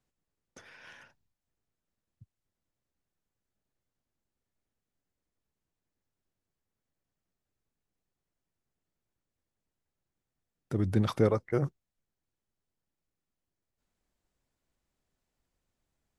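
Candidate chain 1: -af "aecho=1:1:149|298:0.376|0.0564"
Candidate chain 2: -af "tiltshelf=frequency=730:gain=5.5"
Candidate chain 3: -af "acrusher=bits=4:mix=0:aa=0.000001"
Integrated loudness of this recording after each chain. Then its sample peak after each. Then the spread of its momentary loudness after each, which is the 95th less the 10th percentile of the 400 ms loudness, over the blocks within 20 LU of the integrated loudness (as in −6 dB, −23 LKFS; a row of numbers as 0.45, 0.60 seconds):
−29.5, −26.0, −29.0 LKFS; −11.5, −8.5, −11.5 dBFS; 10, 8, 9 LU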